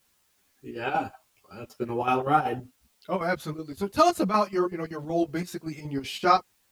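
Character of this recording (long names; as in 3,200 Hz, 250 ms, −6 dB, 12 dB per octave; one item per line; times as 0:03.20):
chopped level 5.3 Hz, depth 65%, duty 70%
a quantiser's noise floor 12 bits, dither triangular
a shimmering, thickened sound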